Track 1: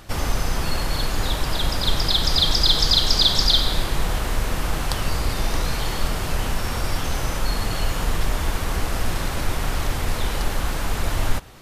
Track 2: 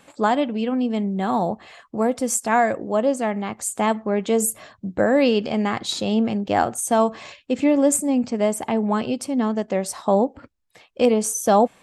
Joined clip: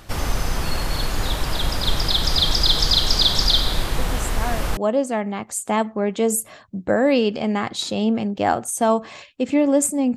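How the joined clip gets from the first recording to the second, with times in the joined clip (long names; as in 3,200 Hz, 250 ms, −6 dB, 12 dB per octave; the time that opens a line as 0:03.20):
track 1
0:03.98: mix in track 2 from 0:02.08 0.79 s −10.5 dB
0:04.77: continue with track 2 from 0:02.87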